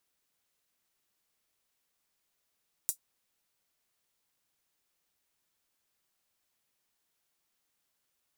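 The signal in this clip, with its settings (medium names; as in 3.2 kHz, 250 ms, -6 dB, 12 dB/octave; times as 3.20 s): closed hi-hat, high-pass 7.7 kHz, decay 0.10 s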